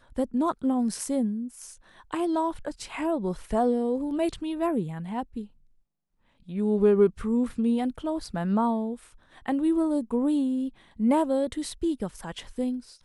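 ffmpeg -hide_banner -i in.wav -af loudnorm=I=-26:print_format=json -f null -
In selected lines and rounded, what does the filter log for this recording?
"input_i" : "-27.4",
"input_tp" : "-9.9",
"input_lra" : "2.5",
"input_thresh" : "-37.8",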